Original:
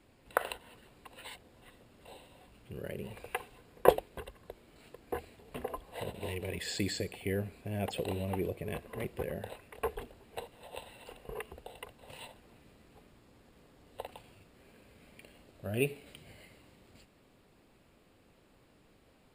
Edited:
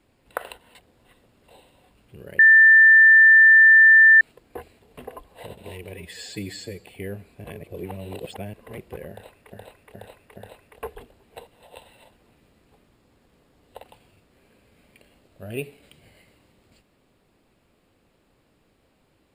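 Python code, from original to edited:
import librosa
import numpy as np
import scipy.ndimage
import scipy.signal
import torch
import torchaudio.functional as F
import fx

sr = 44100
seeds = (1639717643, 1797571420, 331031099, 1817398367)

y = fx.edit(x, sr, fx.cut(start_s=0.75, length_s=0.57),
    fx.bleep(start_s=2.96, length_s=1.82, hz=1780.0, db=-8.5),
    fx.stretch_span(start_s=6.51, length_s=0.61, factor=1.5),
    fx.reverse_span(start_s=7.71, length_s=1.09),
    fx.repeat(start_s=9.37, length_s=0.42, count=4),
    fx.cut(start_s=11.03, length_s=1.23), tone=tone)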